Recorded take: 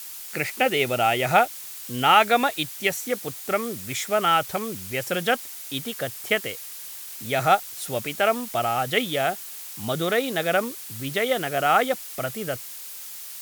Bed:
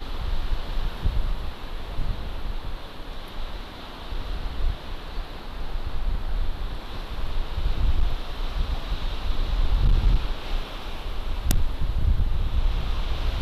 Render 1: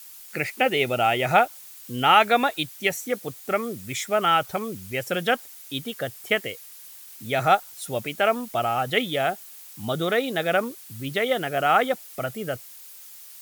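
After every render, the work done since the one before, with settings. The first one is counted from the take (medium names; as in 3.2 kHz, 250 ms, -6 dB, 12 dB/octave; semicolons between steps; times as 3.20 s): noise reduction 8 dB, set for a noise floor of -38 dBFS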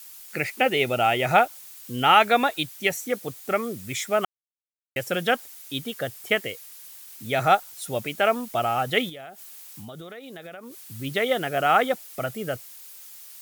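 4.25–4.96 s: mute; 9.09–10.78 s: compression 16:1, threshold -36 dBFS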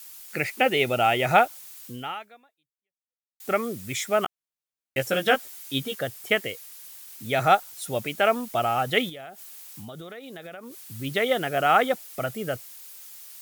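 1.85–3.40 s: fade out exponential; 4.24–5.96 s: doubling 15 ms -3.5 dB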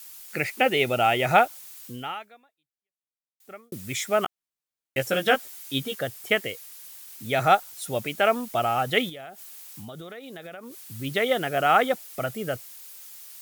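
2.20–3.72 s: fade out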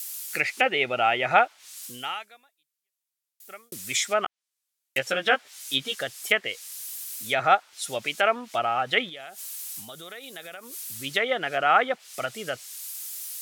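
low-pass that closes with the level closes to 2.2 kHz, closed at -20.5 dBFS; tilt EQ +3.5 dB/octave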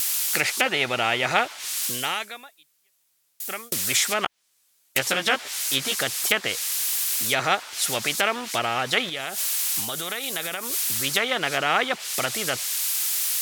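spectrum-flattening compressor 2:1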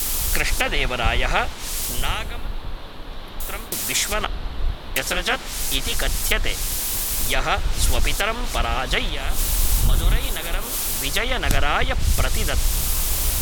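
add bed +1.5 dB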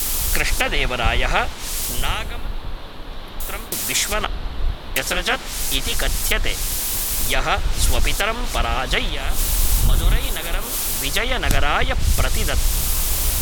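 trim +1.5 dB; peak limiter -2 dBFS, peak gain reduction 1.5 dB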